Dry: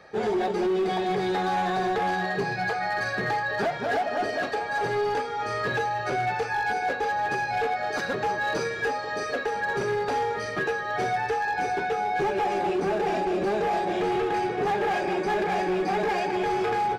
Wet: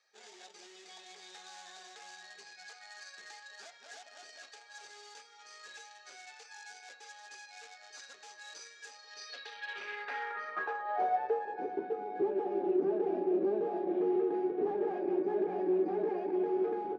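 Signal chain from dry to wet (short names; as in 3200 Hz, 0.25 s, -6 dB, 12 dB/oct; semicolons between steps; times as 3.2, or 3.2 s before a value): added harmonics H 3 -16 dB, 5 -29 dB, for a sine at -20.5 dBFS; three-band isolator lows -21 dB, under 160 Hz, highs -17 dB, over 7100 Hz; band-pass sweep 7200 Hz -> 330 Hz, 8.91–11.74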